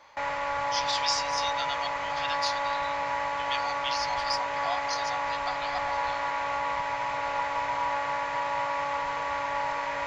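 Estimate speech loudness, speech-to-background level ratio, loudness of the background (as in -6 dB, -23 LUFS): -34.0 LUFS, -4.5 dB, -29.5 LUFS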